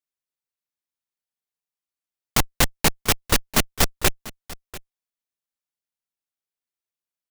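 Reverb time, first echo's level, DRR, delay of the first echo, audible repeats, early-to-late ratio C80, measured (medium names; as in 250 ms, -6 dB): no reverb, -18.5 dB, no reverb, 692 ms, 1, no reverb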